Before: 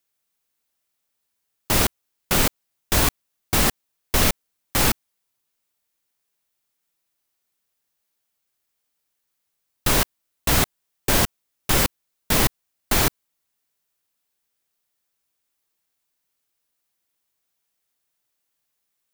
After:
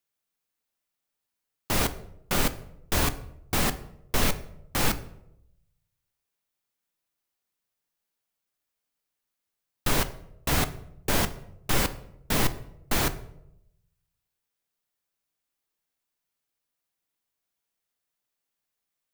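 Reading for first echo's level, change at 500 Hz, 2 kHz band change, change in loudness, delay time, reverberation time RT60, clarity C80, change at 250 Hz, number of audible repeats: none, -4.5 dB, -5.5 dB, -6.5 dB, none, 0.80 s, 18.5 dB, -4.5 dB, none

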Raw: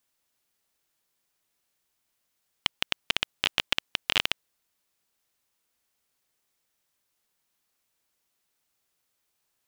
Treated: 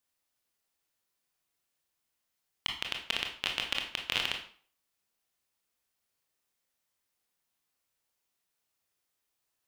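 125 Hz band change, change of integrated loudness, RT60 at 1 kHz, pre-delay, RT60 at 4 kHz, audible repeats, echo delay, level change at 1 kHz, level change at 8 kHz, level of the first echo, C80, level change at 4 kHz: -4.5 dB, -5.0 dB, 0.50 s, 22 ms, 0.40 s, none, none, -4.5 dB, -5.5 dB, none, 11.0 dB, -5.0 dB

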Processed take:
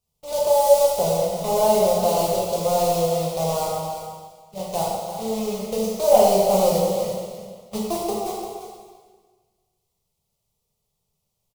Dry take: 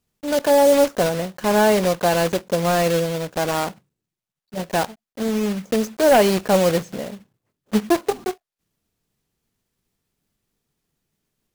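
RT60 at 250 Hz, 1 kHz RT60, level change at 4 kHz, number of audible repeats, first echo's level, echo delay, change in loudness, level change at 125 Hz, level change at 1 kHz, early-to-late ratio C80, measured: 1.6 s, 1.6 s, -3.0 dB, 1, -10.0 dB, 0.344 s, -1.5 dB, -3.5 dB, 0.0 dB, 0.5 dB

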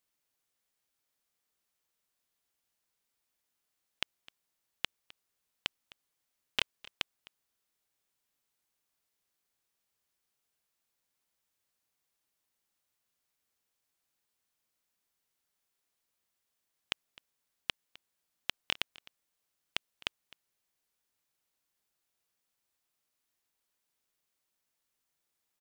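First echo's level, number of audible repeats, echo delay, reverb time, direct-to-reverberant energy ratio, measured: -21.5 dB, 1, 0.258 s, none, none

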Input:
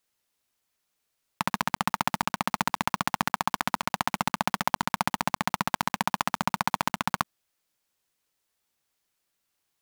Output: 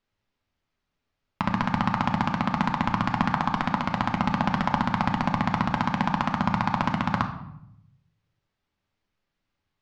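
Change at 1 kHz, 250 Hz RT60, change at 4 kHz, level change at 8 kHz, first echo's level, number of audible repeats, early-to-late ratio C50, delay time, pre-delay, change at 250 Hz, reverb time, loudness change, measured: +2.0 dB, 1.1 s, -3.0 dB, under -10 dB, none, none, 9.0 dB, none, 3 ms, +9.0 dB, 0.75 s, +3.0 dB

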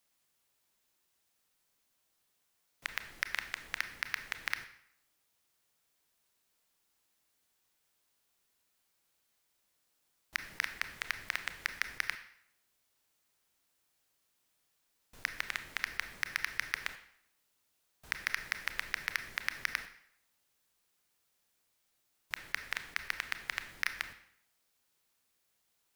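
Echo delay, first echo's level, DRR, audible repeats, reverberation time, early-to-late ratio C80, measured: none, none, 9.0 dB, none, 0.70 s, 14.0 dB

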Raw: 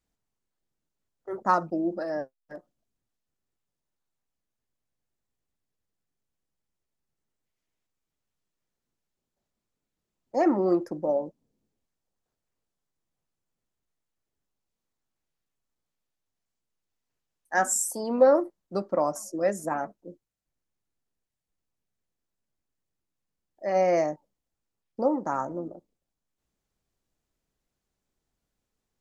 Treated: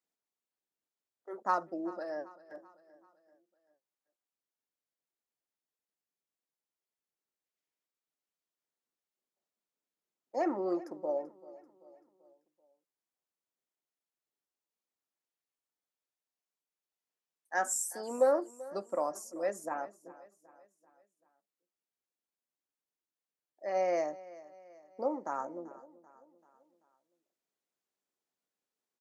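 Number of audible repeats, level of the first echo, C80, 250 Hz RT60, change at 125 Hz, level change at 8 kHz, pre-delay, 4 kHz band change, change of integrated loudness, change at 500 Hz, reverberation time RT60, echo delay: 3, -19.0 dB, none, none, under -15 dB, -7.0 dB, none, -7.0 dB, -8.0 dB, -7.5 dB, none, 0.387 s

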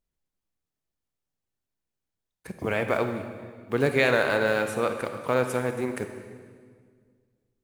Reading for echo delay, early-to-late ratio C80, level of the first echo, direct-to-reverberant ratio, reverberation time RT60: none, 8.5 dB, none, 6.5 dB, 1.9 s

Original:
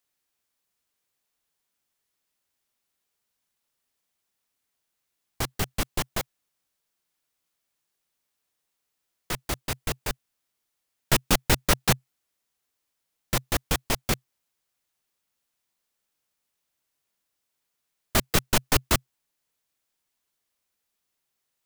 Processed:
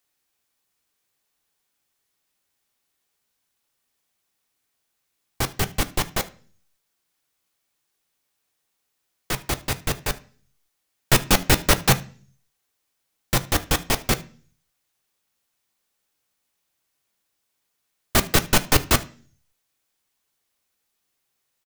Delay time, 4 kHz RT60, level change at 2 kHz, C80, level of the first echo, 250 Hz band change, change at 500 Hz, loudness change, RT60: 75 ms, 0.45 s, +5.0 dB, 24.5 dB, -22.0 dB, +4.5 dB, +4.5 dB, +4.5 dB, 0.40 s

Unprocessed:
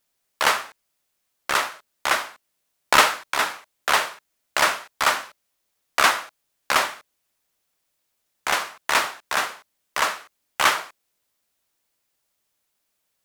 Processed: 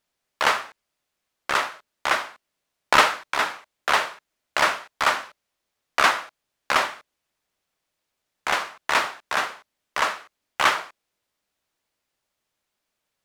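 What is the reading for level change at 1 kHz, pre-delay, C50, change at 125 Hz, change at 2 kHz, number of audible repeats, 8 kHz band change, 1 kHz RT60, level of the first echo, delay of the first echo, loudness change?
0.0 dB, none, none, 0.0 dB, -0.5 dB, none, -6.0 dB, none, none, none, -1.0 dB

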